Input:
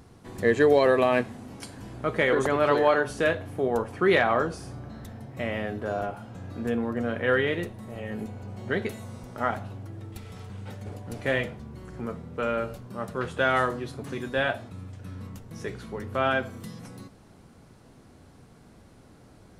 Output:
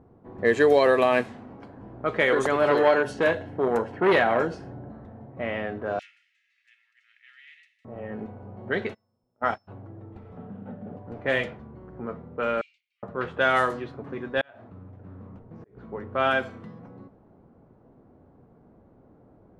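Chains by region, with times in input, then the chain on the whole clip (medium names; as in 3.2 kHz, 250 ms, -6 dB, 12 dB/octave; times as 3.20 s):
2.60–4.92 s: bass shelf 370 Hz +6.5 dB + comb of notches 1.2 kHz + transformer saturation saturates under 750 Hz
5.99–7.85 s: rippled Chebyshev high-pass 1.9 kHz, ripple 6 dB + comb 2.3 ms, depth 57% + spectrum-flattening compressor 2:1
8.93–9.67 s: gate -31 dBFS, range -32 dB + band-stop 2.1 kHz, Q 20 + whistle 5.3 kHz -61 dBFS
10.37–10.97 s: cabinet simulation 130–3500 Hz, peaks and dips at 170 Hz +10 dB, 240 Hz +10 dB, 340 Hz -4 dB, 650 Hz +3 dB, 1 kHz -7 dB, 2.2 kHz -7 dB + three bands compressed up and down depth 70%
12.61–13.03 s: Chebyshev band-pass 2.2–8.3 kHz, order 5 + compression 2:1, threshold -52 dBFS
14.41–15.77 s: compression 8:1, threshold -35 dBFS + slow attack 343 ms + loudspeaker Doppler distortion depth 0.25 ms
whole clip: bass shelf 210 Hz -9 dB; level-controlled noise filter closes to 680 Hz, open at -21 dBFS; treble shelf 10 kHz -5 dB; trim +2.5 dB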